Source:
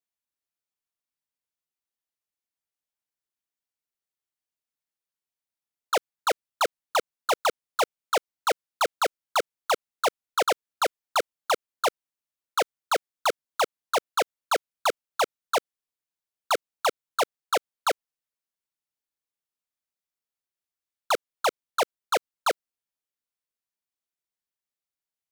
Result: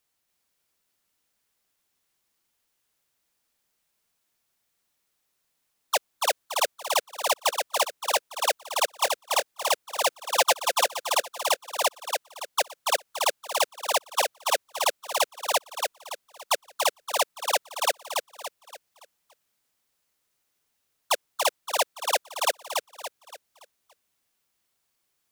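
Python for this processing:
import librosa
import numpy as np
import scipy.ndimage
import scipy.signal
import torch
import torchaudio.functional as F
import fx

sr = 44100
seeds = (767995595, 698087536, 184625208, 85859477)

y = fx.level_steps(x, sr, step_db=22)
y = fx.high_shelf(y, sr, hz=3200.0, db=10.0)
y = fx.dmg_noise_colour(y, sr, seeds[0], colour='white', level_db=-78.0)
y = fx.comb(y, sr, ms=5.8, depth=0.98, at=(10.07, 10.83), fade=0.02)
y = fx.echo_feedback(y, sr, ms=285, feedback_pct=39, wet_db=-4.0)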